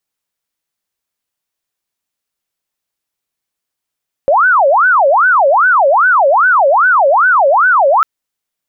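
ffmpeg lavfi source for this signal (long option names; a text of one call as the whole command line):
ffmpeg -f lavfi -i "aevalsrc='0.501*sin(2*PI*(1031*t-489/(2*PI*2.5)*sin(2*PI*2.5*t)))':duration=3.75:sample_rate=44100" out.wav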